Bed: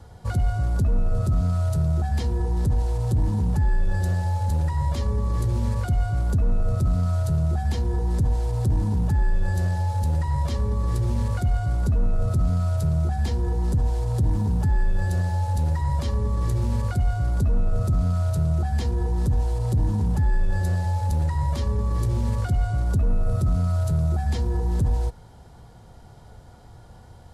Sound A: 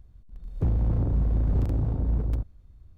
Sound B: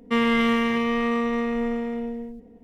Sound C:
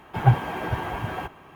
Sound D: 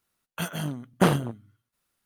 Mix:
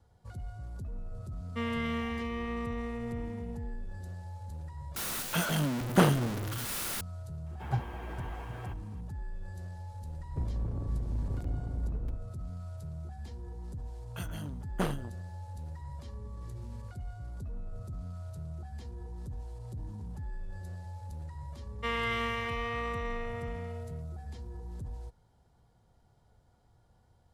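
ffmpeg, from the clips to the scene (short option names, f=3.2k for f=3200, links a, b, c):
-filter_complex "[2:a]asplit=2[a][b];[4:a]asplit=2[c][d];[0:a]volume=-19dB[e];[c]aeval=exprs='val(0)+0.5*0.0531*sgn(val(0))':c=same[f];[b]highpass=510[g];[e]asplit=2[h][i];[h]atrim=end=4.964[j];[f]atrim=end=2.05,asetpts=PTS-STARTPTS,volume=-3.5dB[k];[i]atrim=start=7.006[l];[a]atrim=end=2.63,asetpts=PTS-STARTPTS,volume=-13dB,afade=t=in:d=0.004:c=hsin,afade=t=out:st=2.626:d=0.004:c=hsin,adelay=1450[m];[3:a]atrim=end=1.55,asetpts=PTS-STARTPTS,volume=-14.5dB,afade=t=in:d=0.004:c=hsin,afade=t=out:st=1.546:d=0.004:c=hsin,adelay=328986S[n];[1:a]atrim=end=2.97,asetpts=PTS-STARTPTS,volume=-10.5dB,afade=t=in:d=0.004:c=hsin,afade=t=out:st=2.966:d=0.004:c=hsin,adelay=9750[o];[d]atrim=end=2.05,asetpts=PTS-STARTPTS,volume=-11.5dB,afade=t=in:d=0.004:c=hsin,afade=t=out:st=2.046:d=0.004:c=hsin,adelay=13780[p];[g]atrim=end=2.63,asetpts=PTS-STARTPTS,volume=-7.5dB,afade=t=in:d=0.004:c=hsin,afade=t=out:st=2.626:d=0.004:c=hsin,adelay=21720[q];[j][k]acrossfade=d=0.004:c1=hsin:c2=hsin[r];[r][l]acrossfade=d=0.004:c1=hsin:c2=hsin[s];[s][m][n][o][p][q]amix=inputs=6:normalize=0"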